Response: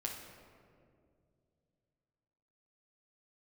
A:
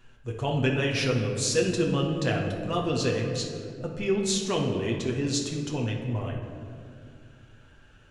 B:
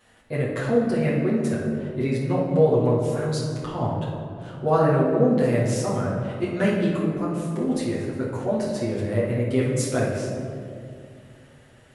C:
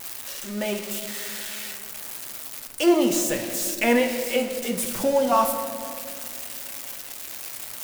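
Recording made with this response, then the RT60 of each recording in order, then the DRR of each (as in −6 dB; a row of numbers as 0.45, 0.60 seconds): A; 2.3, 2.3, 2.4 seconds; −1.0, −7.5, 3.5 decibels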